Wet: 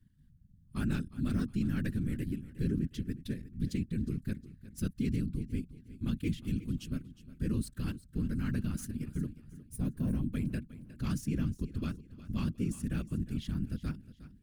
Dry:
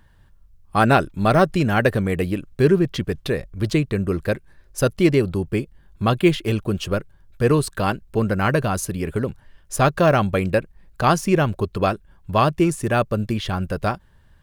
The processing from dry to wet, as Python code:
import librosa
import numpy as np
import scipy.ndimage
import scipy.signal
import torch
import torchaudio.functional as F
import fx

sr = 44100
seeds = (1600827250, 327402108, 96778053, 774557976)

p1 = fx.tracing_dist(x, sr, depth_ms=0.027)
p2 = fx.tone_stack(p1, sr, knobs='5-5-5')
p3 = fx.whisperise(p2, sr, seeds[0])
p4 = fx.curve_eq(p3, sr, hz=(120.0, 250.0, 760.0, 1600.0, 2500.0, 10000.0), db=(0, 3, -27, -17, -18, -13))
p5 = fx.level_steps(p4, sr, step_db=14)
p6 = p4 + F.gain(torch.from_numpy(p5), 3.0).numpy()
p7 = fx.spec_box(p6, sr, start_s=9.62, length_s=0.69, low_hz=1100.0, high_hz=8100.0, gain_db=-11)
y = p7 + fx.echo_feedback(p7, sr, ms=360, feedback_pct=35, wet_db=-16.0, dry=0)